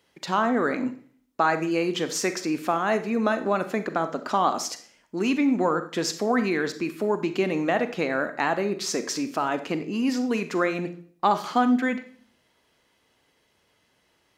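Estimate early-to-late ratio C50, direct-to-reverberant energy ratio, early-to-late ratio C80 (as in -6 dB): 12.0 dB, 9.5 dB, 16.0 dB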